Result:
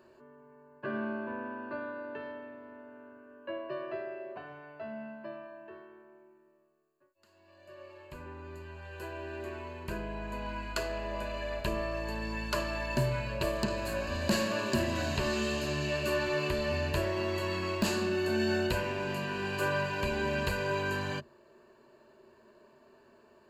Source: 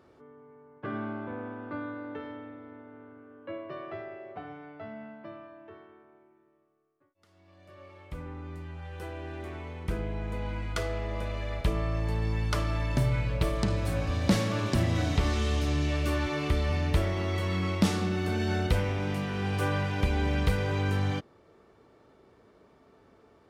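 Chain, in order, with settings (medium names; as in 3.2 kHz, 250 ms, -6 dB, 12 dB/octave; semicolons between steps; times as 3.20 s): peaking EQ 63 Hz -13 dB 2.5 oct; in parallel at -3 dB: wavefolder -22 dBFS; on the sum: rippled EQ curve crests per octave 1.4, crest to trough 13 dB; trim -5.5 dB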